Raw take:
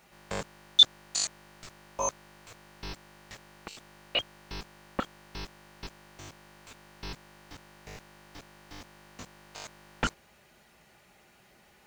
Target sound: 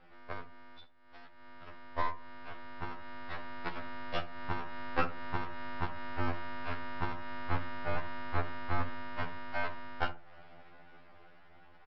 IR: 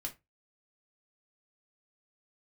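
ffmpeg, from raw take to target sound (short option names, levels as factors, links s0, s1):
-filter_complex "[0:a]asubboost=boost=3:cutoff=130,acompressor=threshold=0.0158:ratio=12,aemphasis=mode=production:type=bsi,dynaudnorm=f=630:g=9:m=5.01,asplit=2[s0][s1];[1:a]atrim=start_sample=2205[s2];[s1][s2]afir=irnorm=-1:irlink=0,volume=0.75[s3];[s0][s3]amix=inputs=2:normalize=0,aeval=exprs='clip(val(0),-1,0.168)':c=same,lowpass=f=1600:w=0.5412,lowpass=f=1600:w=1.3066,aresample=11025,aeval=exprs='max(val(0),0)':c=same,aresample=44100,asplit=2[s4][s5];[s5]adelay=64,lowpass=f=960:p=1,volume=0.251,asplit=2[s6][s7];[s7]adelay=64,lowpass=f=960:p=1,volume=0.41,asplit=2[s8][s9];[s9]adelay=64,lowpass=f=960:p=1,volume=0.41,asplit=2[s10][s11];[s11]adelay=64,lowpass=f=960:p=1,volume=0.41[s12];[s4][s6][s8][s10][s12]amix=inputs=5:normalize=0,afftfilt=real='re*2*eq(mod(b,4),0)':imag='im*2*eq(mod(b,4),0)':win_size=2048:overlap=0.75,volume=1.88"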